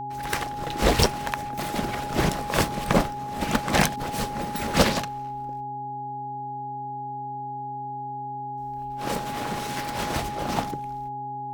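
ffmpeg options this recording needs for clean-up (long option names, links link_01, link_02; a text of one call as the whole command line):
ffmpeg -i in.wav -af "bandreject=frequency=132:width_type=h:width=4,bandreject=frequency=264:width_type=h:width=4,bandreject=frequency=396:width_type=h:width=4,bandreject=frequency=830:width=30" out.wav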